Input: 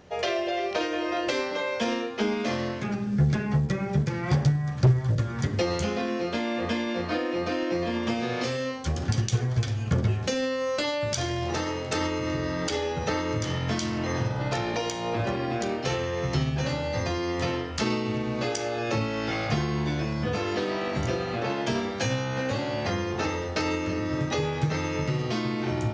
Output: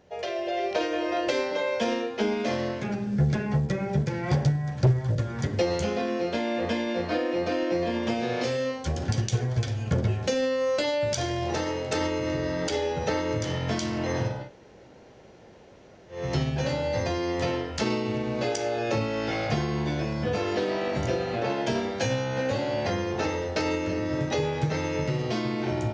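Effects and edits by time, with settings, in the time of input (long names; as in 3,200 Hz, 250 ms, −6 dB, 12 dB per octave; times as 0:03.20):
0:14.39–0:16.20: fill with room tone, crossfade 0.24 s
whole clip: parametric band 560 Hz +4.5 dB 1 octave; notch filter 1,200 Hz, Q 9.8; automatic gain control gain up to 7 dB; level −8 dB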